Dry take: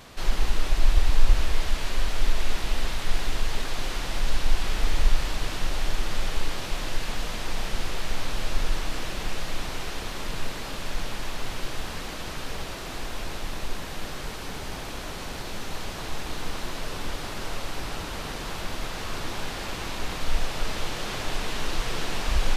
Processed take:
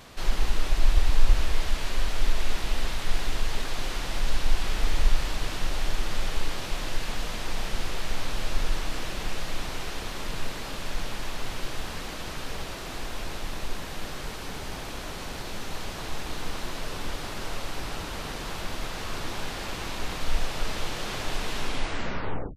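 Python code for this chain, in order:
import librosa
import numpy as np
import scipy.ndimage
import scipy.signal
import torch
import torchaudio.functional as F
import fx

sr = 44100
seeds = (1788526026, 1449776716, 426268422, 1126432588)

y = fx.tape_stop_end(x, sr, length_s=1.0)
y = F.gain(torch.from_numpy(y), -1.0).numpy()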